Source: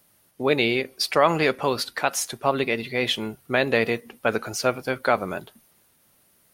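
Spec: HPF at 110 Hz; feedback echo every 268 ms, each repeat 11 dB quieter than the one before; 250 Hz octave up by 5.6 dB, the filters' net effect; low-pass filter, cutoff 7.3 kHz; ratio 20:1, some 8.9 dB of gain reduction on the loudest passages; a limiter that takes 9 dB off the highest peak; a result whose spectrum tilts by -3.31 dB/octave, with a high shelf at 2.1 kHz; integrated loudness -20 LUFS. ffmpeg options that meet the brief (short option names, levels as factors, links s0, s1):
-af "highpass=110,lowpass=7300,equalizer=f=250:t=o:g=7,highshelf=f=2100:g=3.5,acompressor=threshold=0.0891:ratio=20,alimiter=limit=0.15:level=0:latency=1,aecho=1:1:268|536|804:0.282|0.0789|0.0221,volume=2.99"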